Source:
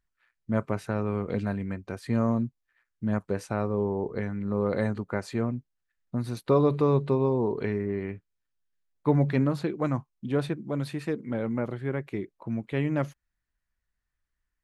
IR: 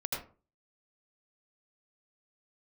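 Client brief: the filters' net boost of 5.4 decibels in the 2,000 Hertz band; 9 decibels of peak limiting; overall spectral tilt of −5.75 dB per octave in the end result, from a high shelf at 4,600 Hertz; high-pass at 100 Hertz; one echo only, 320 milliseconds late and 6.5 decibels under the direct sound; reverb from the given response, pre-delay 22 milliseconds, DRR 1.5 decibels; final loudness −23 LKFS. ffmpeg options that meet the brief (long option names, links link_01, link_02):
-filter_complex "[0:a]highpass=100,equalizer=frequency=2000:width_type=o:gain=7.5,highshelf=frequency=4600:gain=-4.5,alimiter=limit=-18dB:level=0:latency=1,aecho=1:1:320:0.473,asplit=2[link_01][link_02];[1:a]atrim=start_sample=2205,adelay=22[link_03];[link_02][link_03]afir=irnorm=-1:irlink=0,volume=-5.5dB[link_04];[link_01][link_04]amix=inputs=2:normalize=0,volume=5dB"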